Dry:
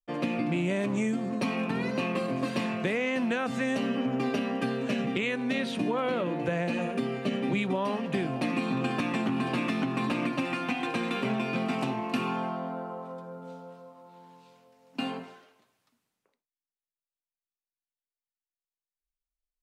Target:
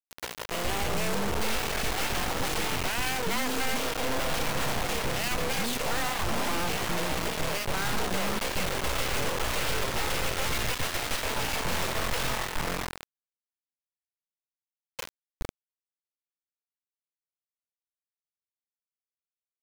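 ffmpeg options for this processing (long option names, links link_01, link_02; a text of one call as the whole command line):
ffmpeg -i in.wav -filter_complex "[0:a]aeval=exprs='abs(val(0))':channel_layout=same,acrossover=split=330[link_01][link_02];[link_01]adelay=420[link_03];[link_03][link_02]amix=inputs=2:normalize=0,acrusher=bits=4:mix=0:aa=0.000001" out.wav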